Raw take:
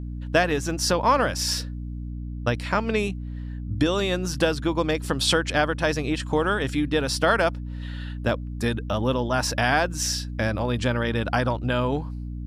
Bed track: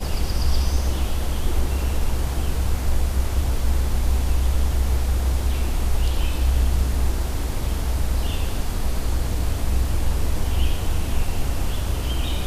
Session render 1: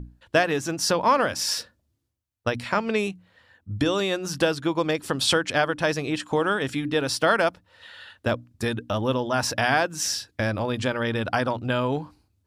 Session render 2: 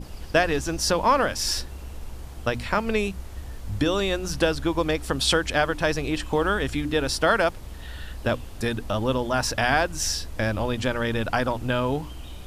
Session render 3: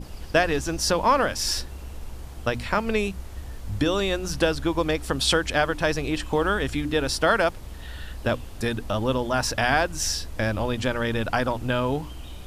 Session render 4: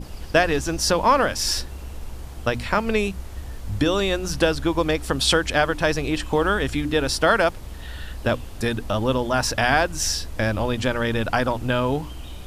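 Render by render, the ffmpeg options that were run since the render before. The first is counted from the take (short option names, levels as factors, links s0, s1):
-af "bandreject=f=60:t=h:w=6,bandreject=f=120:t=h:w=6,bandreject=f=180:t=h:w=6,bandreject=f=240:t=h:w=6,bandreject=f=300:t=h:w=6"
-filter_complex "[1:a]volume=0.178[s0];[0:a][s0]amix=inputs=2:normalize=0"
-af anull
-af "volume=1.33"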